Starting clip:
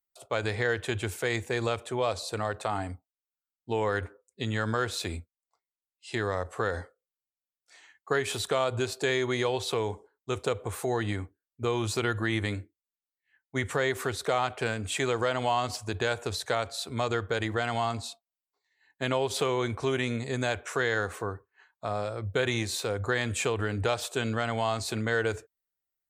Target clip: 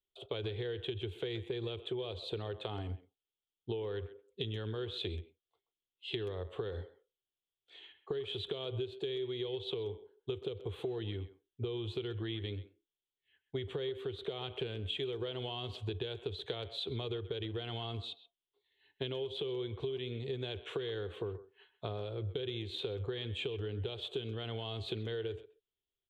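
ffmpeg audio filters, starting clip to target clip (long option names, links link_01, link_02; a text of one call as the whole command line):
ffmpeg -i in.wav -filter_complex "[0:a]firequalizer=gain_entry='entry(100,0);entry(250,-9);entry(390,5);entry(590,-10);entry(1300,-14);entry(2000,-12);entry(3300,6);entry(5200,-28)':delay=0.05:min_phase=1,acrossover=split=510|2800[link_01][link_02][link_03];[link_02]alimiter=level_in=6.5dB:limit=-24dB:level=0:latency=1:release=242,volume=-6.5dB[link_04];[link_01][link_04][link_03]amix=inputs=3:normalize=0,acompressor=threshold=-40dB:ratio=12,asplit=2[link_05][link_06];[link_06]adelay=130,highpass=300,lowpass=3400,asoftclip=type=hard:threshold=-37dB,volume=-14dB[link_07];[link_05][link_07]amix=inputs=2:normalize=0,volume=5dB" out.wav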